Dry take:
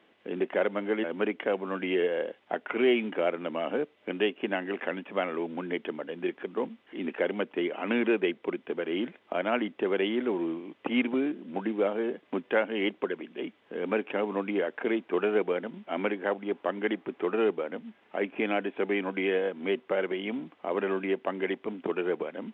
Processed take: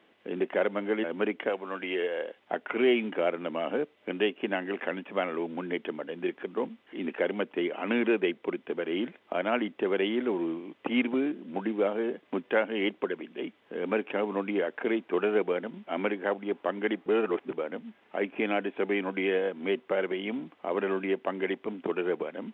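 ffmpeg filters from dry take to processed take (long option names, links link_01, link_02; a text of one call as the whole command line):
ffmpeg -i in.wav -filter_complex "[0:a]asettb=1/sr,asplit=3[link_01][link_02][link_03];[link_01]atrim=end=1.494[link_04];[link_02]atrim=start=1.49:end=2.37,asetpts=PTS-STARTPTS,afade=type=in:duration=0.004:curve=qsin,afade=type=out:start_time=0.876:duration=0.004:curve=qsin,highpass=frequency=490:poles=1[link_05];[link_03]atrim=start=2.366[link_06];[link_04][link_05]acrossfade=duration=0.004:curve1=hsin:curve2=qsin[link_07];[link_07][link_06]acrossfade=duration=0.004:curve1=qsin:curve2=hsin,asplit=3[link_08][link_09][link_10];[link_08]atrim=end=17.062[link_11];[link_09]atrim=start=17.058:end=17.532,asetpts=PTS-STARTPTS,areverse[link_12];[link_10]atrim=start=17.528[link_13];[link_11][link_12]acrossfade=duration=0.004:curve1=hsin:curve2=hsin[link_14];[link_14][link_13]acrossfade=duration=0.004:curve1=hsin:curve2=hsin" out.wav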